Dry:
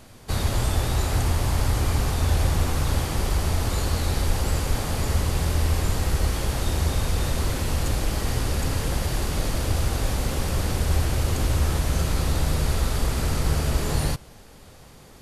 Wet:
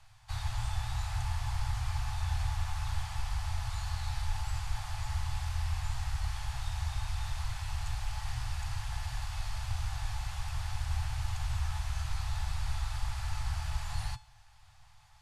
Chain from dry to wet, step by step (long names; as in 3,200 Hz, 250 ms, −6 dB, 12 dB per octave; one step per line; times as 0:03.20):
elliptic band-stop filter 120–780 Hz, stop band 40 dB
high-frequency loss of the air 51 metres
tuned comb filter 860 Hz, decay 0.3 s, mix 70%